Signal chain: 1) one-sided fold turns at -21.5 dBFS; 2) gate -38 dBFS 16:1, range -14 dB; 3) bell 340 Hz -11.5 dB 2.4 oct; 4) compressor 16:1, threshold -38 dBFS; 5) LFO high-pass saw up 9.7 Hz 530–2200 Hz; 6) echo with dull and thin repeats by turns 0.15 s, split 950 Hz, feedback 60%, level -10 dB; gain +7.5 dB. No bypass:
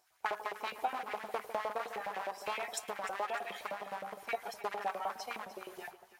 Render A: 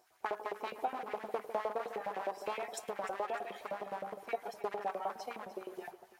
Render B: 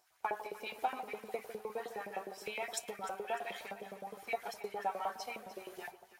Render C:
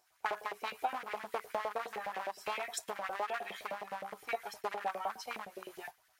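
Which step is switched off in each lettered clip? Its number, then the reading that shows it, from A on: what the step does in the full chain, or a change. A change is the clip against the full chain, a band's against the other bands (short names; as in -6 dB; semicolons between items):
3, 250 Hz band +8.0 dB; 1, distortion -5 dB; 6, echo-to-direct -12.0 dB to none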